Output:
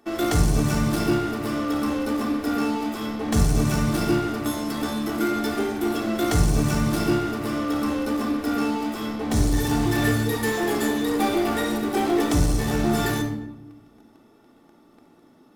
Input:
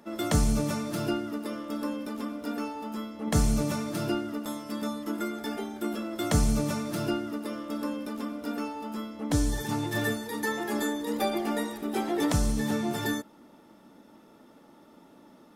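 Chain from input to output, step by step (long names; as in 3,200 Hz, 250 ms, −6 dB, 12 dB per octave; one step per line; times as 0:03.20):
in parallel at −11.5 dB: fuzz pedal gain 38 dB, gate −45 dBFS
on the sum: rectangular room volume 3,500 cubic metres, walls furnished, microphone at 3.5 metres
level −4 dB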